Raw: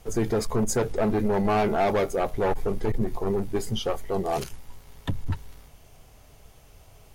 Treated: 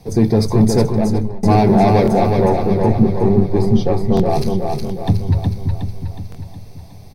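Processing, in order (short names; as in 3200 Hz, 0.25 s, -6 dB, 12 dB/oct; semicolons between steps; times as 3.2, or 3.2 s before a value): 2.37–4.3 high shelf 5000 Hz -10.5 dB; feedback echo 0.366 s, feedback 52%, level -4 dB; 0.8–1.43 fade out; reverb RT60 0.30 s, pre-delay 3 ms, DRR 11 dB; stuck buffer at 2.03/4.15/4.85/6.3, samples 1024, times 1; gain +1 dB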